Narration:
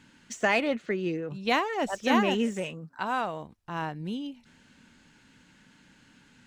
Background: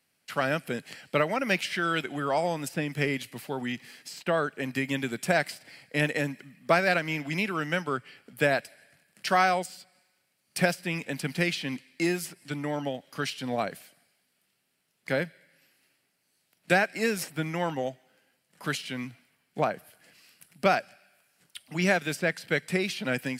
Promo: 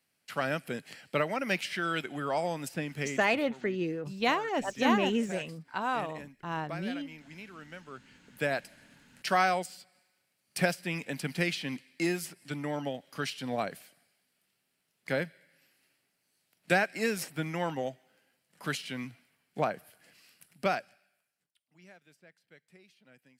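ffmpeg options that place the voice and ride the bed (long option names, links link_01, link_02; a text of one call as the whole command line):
ffmpeg -i stem1.wav -i stem2.wav -filter_complex "[0:a]adelay=2750,volume=-2dB[link_01];[1:a]volume=11dB,afade=type=out:start_time=2.75:duration=0.79:silence=0.199526,afade=type=in:start_time=7.88:duration=0.97:silence=0.177828,afade=type=out:start_time=20.31:duration=1.23:silence=0.0398107[link_02];[link_01][link_02]amix=inputs=2:normalize=0" out.wav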